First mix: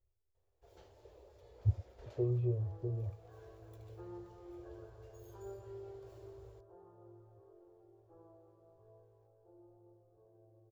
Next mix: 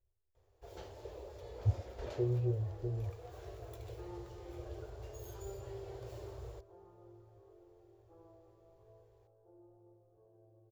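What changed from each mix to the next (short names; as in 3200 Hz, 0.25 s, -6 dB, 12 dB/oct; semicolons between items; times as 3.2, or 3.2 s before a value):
first sound +11.0 dB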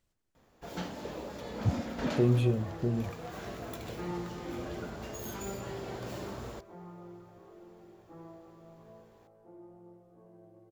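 speech: remove Bessel low-pass 1000 Hz; second sound: remove brick-wall FIR low-pass 1800 Hz; master: remove EQ curve 110 Hz 0 dB, 160 Hz -26 dB, 260 Hz -28 dB, 380 Hz -4 dB, 1400 Hz -16 dB, 4800 Hz -12 dB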